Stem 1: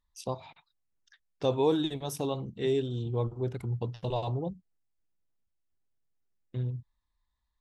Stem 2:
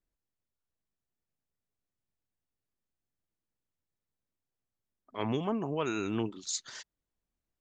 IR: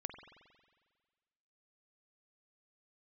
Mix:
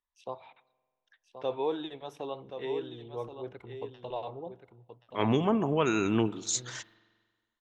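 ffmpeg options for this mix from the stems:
-filter_complex "[0:a]acrossover=split=360 4200:gain=0.178 1 0.0631[s0][s1][s2];[s0][s1][s2]amix=inputs=3:normalize=0,volume=0.473,asplit=3[s3][s4][s5];[s4]volume=0.2[s6];[s5]volume=0.398[s7];[1:a]agate=range=0.0224:threshold=0.00141:ratio=3:detection=peak,volume=1.06,asplit=2[s8][s9];[s9]volume=0.422[s10];[2:a]atrim=start_sample=2205[s11];[s6][s10]amix=inputs=2:normalize=0[s12];[s12][s11]afir=irnorm=-1:irlink=0[s13];[s7]aecho=0:1:1077:1[s14];[s3][s8][s13][s14]amix=inputs=4:normalize=0,equalizer=f=4700:t=o:w=0.3:g=-8.5,dynaudnorm=f=110:g=3:m=1.41"

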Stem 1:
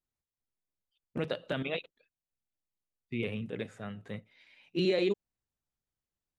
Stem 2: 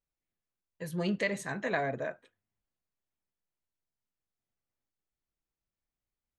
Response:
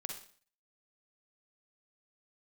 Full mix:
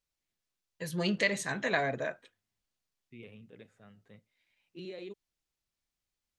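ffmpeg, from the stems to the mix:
-filter_complex "[0:a]volume=0.168[s0];[1:a]equalizer=f=4600:w=0.52:g=8,volume=1,asplit=2[s1][s2];[s2]apad=whole_len=281722[s3];[s0][s3]sidechaincompress=threshold=0.0251:ratio=8:attack=16:release=1040[s4];[s4][s1]amix=inputs=2:normalize=0"

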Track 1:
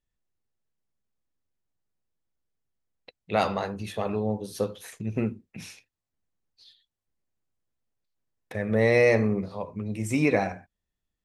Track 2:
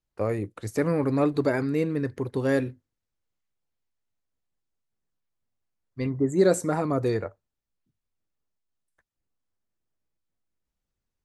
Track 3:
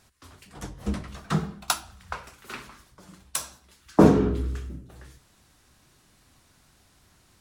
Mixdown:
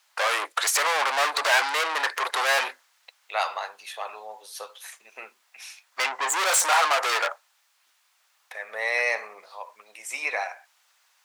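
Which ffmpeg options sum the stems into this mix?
-filter_complex "[0:a]volume=1.33[s0];[1:a]asplit=2[s1][s2];[s2]highpass=f=720:p=1,volume=63.1,asoftclip=type=tanh:threshold=0.335[s3];[s1][s3]amix=inputs=2:normalize=0,lowpass=f=6400:p=1,volume=0.501,volume=1[s4];[s0][s4]amix=inputs=2:normalize=0,highpass=f=790:w=0.5412,highpass=f=790:w=1.3066"

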